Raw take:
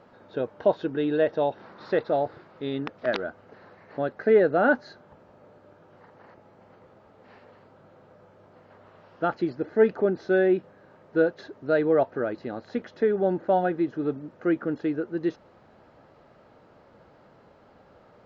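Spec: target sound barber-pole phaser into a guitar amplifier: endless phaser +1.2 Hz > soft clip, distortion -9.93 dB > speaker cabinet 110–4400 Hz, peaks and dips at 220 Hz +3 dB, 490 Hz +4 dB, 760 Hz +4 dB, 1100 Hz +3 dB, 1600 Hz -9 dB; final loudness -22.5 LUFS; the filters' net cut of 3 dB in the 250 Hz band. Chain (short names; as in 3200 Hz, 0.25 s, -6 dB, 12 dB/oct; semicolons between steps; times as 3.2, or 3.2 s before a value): bell 250 Hz -6 dB; endless phaser +1.2 Hz; soft clip -24.5 dBFS; speaker cabinet 110–4400 Hz, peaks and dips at 220 Hz +3 dB, 490 Hz +4 dB, 760 Hz +4 dB, 1100 Hz +3 dB, 1600 Hz -9 dB; gain +10 dB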